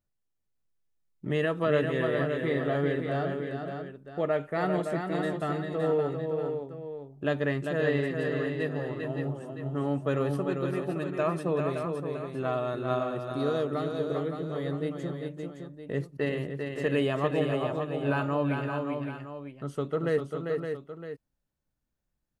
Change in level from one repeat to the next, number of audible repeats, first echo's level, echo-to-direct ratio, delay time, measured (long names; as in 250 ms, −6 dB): repeats not evenly spaced, 3, −5.5 dB, −2.5 dB, 396 ms